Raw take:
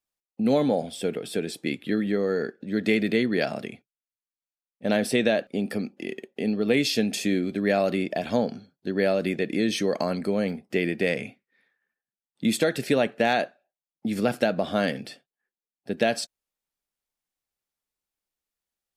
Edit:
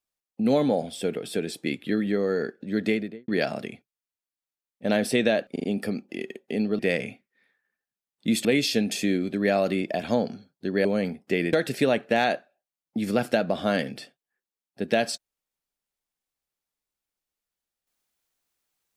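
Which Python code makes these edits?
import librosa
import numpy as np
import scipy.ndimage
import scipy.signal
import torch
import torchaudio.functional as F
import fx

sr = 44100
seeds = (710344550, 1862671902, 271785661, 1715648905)

y = fx.studio_fade_out(x, sr, start_s=2.78, length_s=0.5)
y = fx.edit(y, sr, fx.stutter(start_s=5.52, slice_s=0.04, count=4),
    fx.cut(start_s=9.07, length_s=1.21),
    fx.move(start_s=10.96, length_s=1.66, to_s=6.67), tone=tone)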